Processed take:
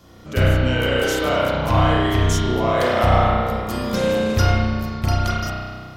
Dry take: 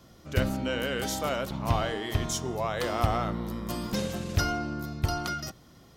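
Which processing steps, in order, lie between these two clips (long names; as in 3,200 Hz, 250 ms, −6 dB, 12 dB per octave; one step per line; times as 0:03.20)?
spring reverb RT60 1.7 s, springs 32 ms, chirp 20 ms, DRR −6.5 dB
level +4 dB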